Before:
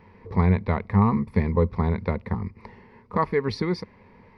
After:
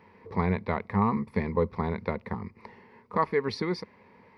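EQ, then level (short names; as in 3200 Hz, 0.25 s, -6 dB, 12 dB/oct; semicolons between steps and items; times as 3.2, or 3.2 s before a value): HPF 250 Hz 6 dB/oct; -1.5 dB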